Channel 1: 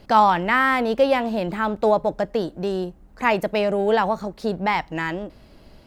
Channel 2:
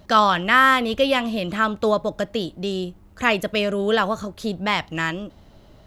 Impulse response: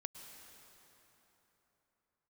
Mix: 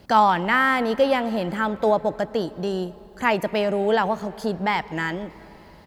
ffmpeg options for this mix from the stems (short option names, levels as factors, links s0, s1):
-filter_complex "[0:a]highpass=50,volume=0.708,asplit=3[s0][s1][s2];[s1]volume=0.473[s3];[1:a]highshelf=f=5500:g=11,adelay=0.5,volume=0.335[s4];[s2]apad=whole_len=258754[s5];[s4][s5]sidechaincompress=threshold=0.0355:ratio=8:attack=16:release=390[s6];[2:a]atrim=start_sample=2205[s7];[s3][s7]afir=irnorm=-1:irlink=0[s8];[s0][s6][s8]amix=inputs=3:normalize=0"